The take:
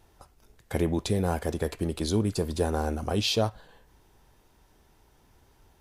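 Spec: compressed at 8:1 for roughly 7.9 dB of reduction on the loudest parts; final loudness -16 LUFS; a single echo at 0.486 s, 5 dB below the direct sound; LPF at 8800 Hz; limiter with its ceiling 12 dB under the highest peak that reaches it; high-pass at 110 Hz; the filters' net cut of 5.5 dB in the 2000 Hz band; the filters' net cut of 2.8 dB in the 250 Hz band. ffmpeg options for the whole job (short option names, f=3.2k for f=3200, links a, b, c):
-af "highpass=110,lowpass=8.8k,equalizer=f=250:t=o:g=-3.5,equalizer=f=2k:t=o:g=-8,acompressor=threshold=-30dB:ratio=8,alimiter=level_in=5.5dB:limit=-24dB:level=0:latency=1,volume=-5.5dB,aecho=1:1:486:0.562,volume=24dB"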